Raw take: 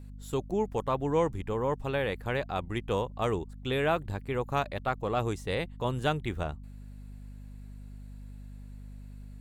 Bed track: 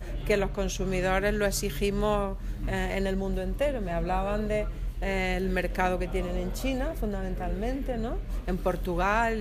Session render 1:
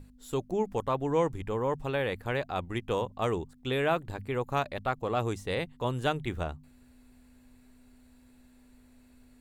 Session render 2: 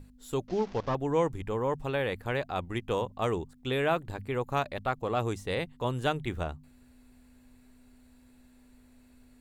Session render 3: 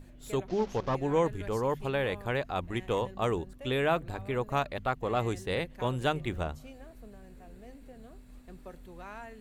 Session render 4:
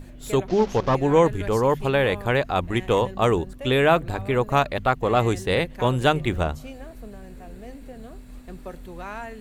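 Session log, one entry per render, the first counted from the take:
hum notches 50/100/150/200 Hz
0.48–0.95 s: one-bit delta coder 32 kbps, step -42 dBFS
add bed track -19.5 dB
trim +9.5 dB

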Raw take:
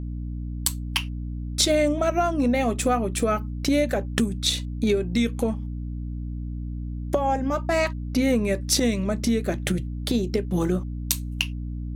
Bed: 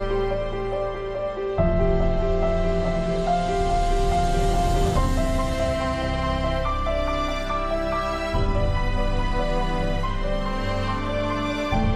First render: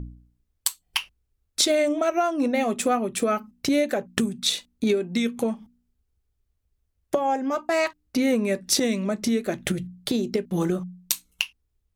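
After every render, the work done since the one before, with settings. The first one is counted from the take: de-hum 60 Hz, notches 5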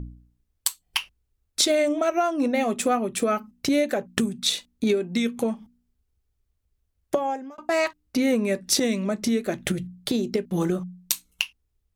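7.15–7.58 s: fade out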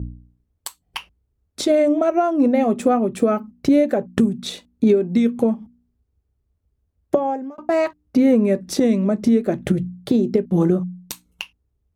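high-pass 52 Hz; tilt shelf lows +8.5 dB, about 1.3 kHz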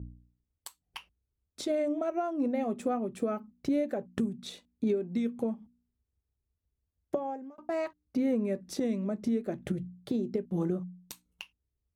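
trim -13.5 dB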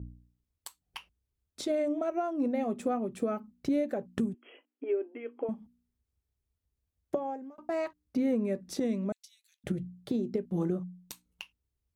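4.34–5.49 s: brick-wall FIR band-pass 260–3300 Hz; 9.12–9.64 s: inverse Chebyshev high-pass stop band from 580 Hz, stop band 80 dB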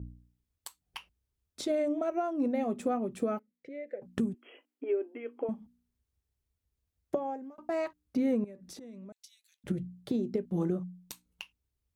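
3.39–4.02 s: two resonant band-passes 1 kHz, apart 2 oct; 8.44–9.68 s: compression 10:1, threshold -44 dBFS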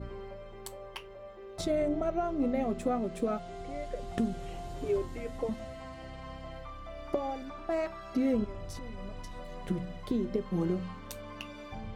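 add bed -20 dB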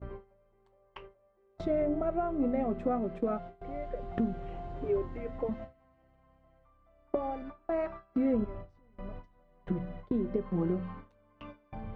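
low-pass 1.8 kHz 12 dB/octave; gate with hold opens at -32 dBFS

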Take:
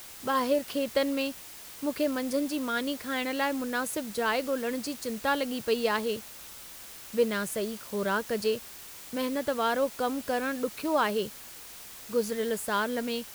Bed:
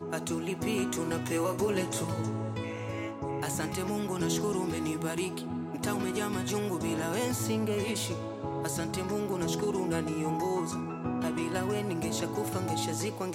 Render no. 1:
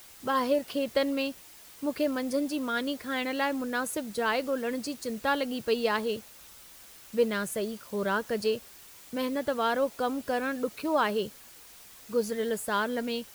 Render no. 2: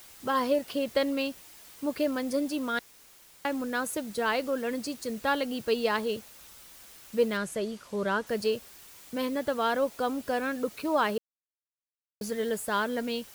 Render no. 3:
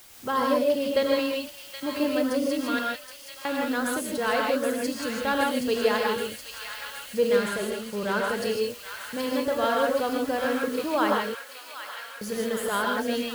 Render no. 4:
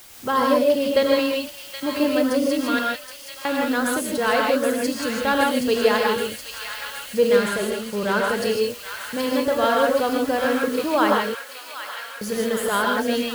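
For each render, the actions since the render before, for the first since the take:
noise reduction 6 dB, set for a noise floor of -46 dBFS
2.79–3.45 s: room tone; 7.37–8.27 s: Bessel low-pass 8.2 kHz; 11.18–12.21 s: mute
feedback echo behind a high-pass 772 ms, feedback 75%, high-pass 1.7 kHz, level -6 dB; gated-style reverb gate 180 ms rising, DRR -0.5 dB
trim +5 dB

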